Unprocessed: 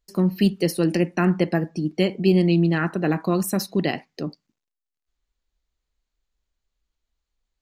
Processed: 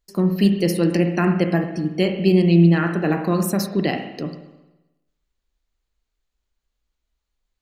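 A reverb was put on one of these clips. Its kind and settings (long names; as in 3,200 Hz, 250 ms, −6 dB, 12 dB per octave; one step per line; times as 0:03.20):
spring reverb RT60 1 s, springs 35/59 ms, chirp 75 ms, DRR 5.5 dB
level +1 dB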